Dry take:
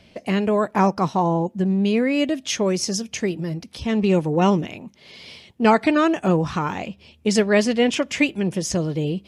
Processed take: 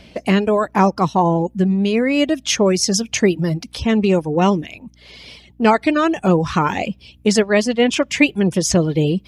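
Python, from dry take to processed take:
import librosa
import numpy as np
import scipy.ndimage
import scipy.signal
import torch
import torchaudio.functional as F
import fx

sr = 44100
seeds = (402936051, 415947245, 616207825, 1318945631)

y = fx.rider(x, sr, range_db=4, speed_s=0.5)
y = fx.dereverb_blind(y, sr, rt60_s=0.61)
y = fx.add_hum(y, sr, base_hz=60, snr_db=34)
y = y * librosa.db_to_amplitude(5.0)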